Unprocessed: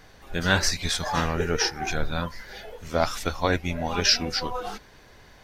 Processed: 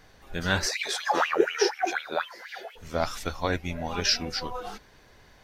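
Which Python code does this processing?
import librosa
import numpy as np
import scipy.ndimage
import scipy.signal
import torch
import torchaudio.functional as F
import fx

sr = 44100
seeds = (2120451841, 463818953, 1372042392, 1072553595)

y = fx.filter_lfo_highpass(x, sr, shape='sine', hz=4.1, low_hz=350.0, high_hz=2900.0, q=7.8, at=(0.65, 2.75), fade=0.02)
y = y * librosa.db_to_amplitude(-4.0)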